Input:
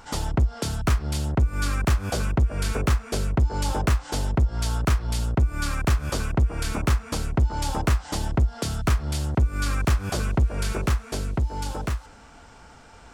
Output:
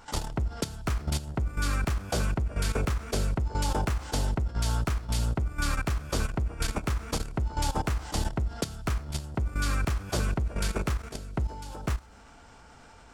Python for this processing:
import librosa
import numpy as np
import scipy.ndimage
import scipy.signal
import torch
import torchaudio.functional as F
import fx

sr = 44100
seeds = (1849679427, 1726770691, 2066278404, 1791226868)

y = fx.rev_schroeder(x, sr, rt60_s=0.87, comb_ms=26, drr_db=15.0)
y = fx.level_steps(y, sr, step_db=13)